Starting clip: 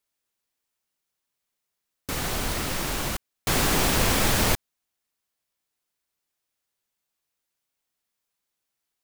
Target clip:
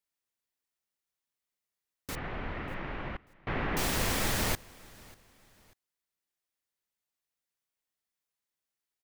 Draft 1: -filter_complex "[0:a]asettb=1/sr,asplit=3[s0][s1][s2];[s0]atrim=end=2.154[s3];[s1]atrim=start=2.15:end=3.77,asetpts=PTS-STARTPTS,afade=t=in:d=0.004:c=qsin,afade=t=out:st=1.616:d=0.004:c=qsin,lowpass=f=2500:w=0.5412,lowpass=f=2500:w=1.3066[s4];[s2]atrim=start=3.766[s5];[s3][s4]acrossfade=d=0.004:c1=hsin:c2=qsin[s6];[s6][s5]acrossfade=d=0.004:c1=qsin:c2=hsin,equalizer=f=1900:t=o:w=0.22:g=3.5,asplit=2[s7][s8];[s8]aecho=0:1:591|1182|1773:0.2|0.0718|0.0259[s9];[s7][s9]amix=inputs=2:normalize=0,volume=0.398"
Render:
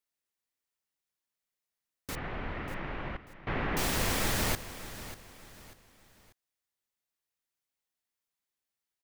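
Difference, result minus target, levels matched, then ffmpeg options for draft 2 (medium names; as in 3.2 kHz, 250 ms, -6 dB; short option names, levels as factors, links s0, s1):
echo-to-direct +9.5 dB
-filter_complex "[0:a]asettb=1/sr,asplit=3[s0][s1][s2];[s0]atrim=end=2.154[s3];[s1]atrim=start=2.15:end=3.77,asetpts=PTS-STARTPTS,afade=t=in:d=0.004:c=qsin,afade=t=out:st=1.616:d=0.004:c=qsin,lowpass=f=2500:w=0.5412,lowpass=f=2500:w=1.3066[s4];[s2]atrim=start=3.766[s5];[s3][s4]acrossfade=d=0.004:c1=hsin:c2=qsin[s6];[s6][s5]acrossfade=d=0.004:c1=qsin:c2=hsin,equalizer=f=1900:t=o:w=0.22:g=3.5,asplit=2[s7][s8];[s8]aecho=0:1:591|1182:0.0668|0.0241[s9];[s7][s9]amix=inputs=2:normalize=0,volume=0.398"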